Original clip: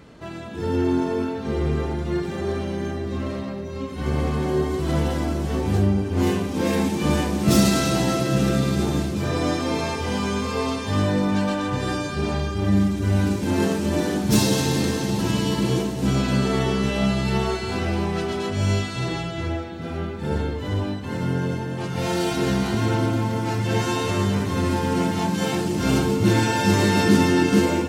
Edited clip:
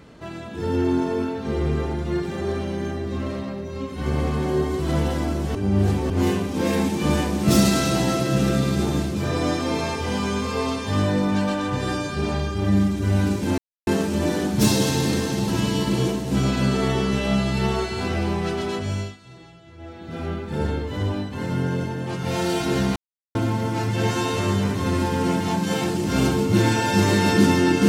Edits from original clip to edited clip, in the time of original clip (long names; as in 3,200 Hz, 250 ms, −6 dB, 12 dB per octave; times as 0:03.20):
0:05.55–0:06.10: reverse
0:13.58: splice in silence 0.29 s
0:18.44–0:19.92: duck −19 dB, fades 0.44 s
0:22.67–0:23.06: silence